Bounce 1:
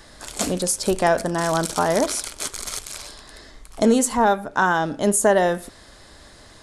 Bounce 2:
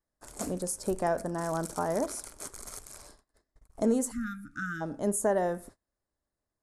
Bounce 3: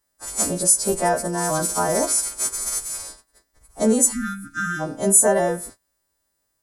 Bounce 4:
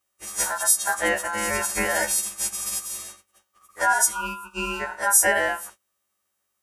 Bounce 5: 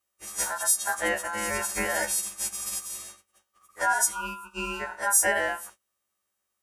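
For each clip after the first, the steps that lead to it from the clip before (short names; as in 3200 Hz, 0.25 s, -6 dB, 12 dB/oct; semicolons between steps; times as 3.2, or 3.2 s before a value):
gate -39 dBFS, range -30 dB; spectral delete 4.11–4.81, 340–1200 Hz; bell 3300 Hz -14.5 dB 1.5 oct; gain -9 dB
frequency quantiser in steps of 2 st; gain +8.5 dB
ring modulator 1200 Hz
vibrato 3.8 Hz 6.7 cents; gain -4 dB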